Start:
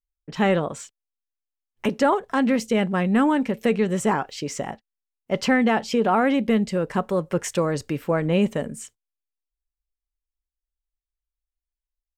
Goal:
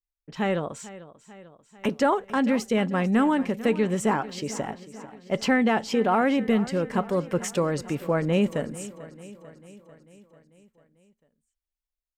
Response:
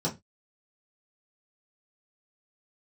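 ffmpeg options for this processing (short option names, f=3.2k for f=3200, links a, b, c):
-filter_complex "[0:a]dynaudnorm=f=280:g=5:m=4.5dB,asplit=2[a][b];[b]aecho=0:1:444|888|1332|1776|2220|2664:0.141|0.0833|0.0492|0.029|0.0171|0.0101[c];[a][c]amix=inputs=2:normalize=0,volume=-6.5dB"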